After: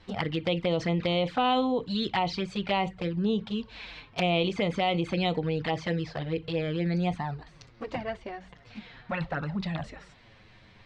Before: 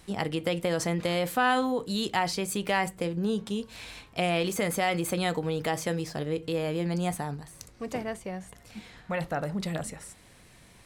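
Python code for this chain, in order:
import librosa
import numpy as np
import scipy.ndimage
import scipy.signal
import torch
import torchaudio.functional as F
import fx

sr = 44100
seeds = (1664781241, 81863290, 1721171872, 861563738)

y = scipy.signal.sosfilt(scipy.signal.butter(4, 4300.0, 'lowpass', fs=sr, output='sos'), x)
y = fx.env_flanger(y, sr, rest_ms=10.9, full_db=-24.0)
y = fx.peak_eq(y, sr, hz=320.0, db=-3.0, octaves=2.3)
y = y * librosa.db_to_amplitude(4.5)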